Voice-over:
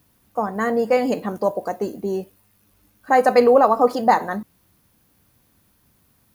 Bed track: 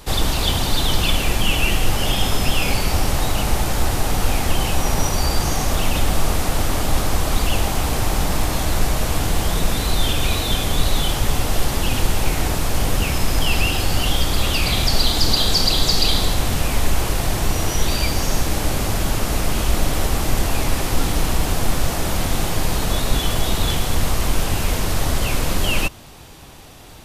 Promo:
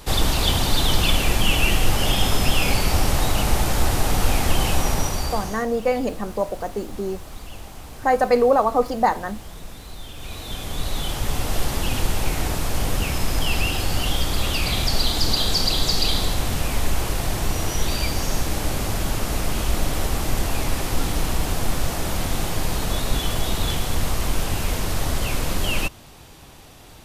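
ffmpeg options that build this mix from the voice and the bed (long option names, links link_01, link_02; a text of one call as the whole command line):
ffmpeg -i stem1.wav -i stem2.wav -filter_complex "[0:a]adelay=4950,volume=-3dB[link_01];[1:a]volume=14.5dB,afade=type=out:start_time=4.73:duration=0.93:silence=0.125893,afade=type=in:start_time=10.12:duration=1.45:silence=0.177828[link_02];[link_01][link_02]amix=inputs=2:normalize=0" out.wav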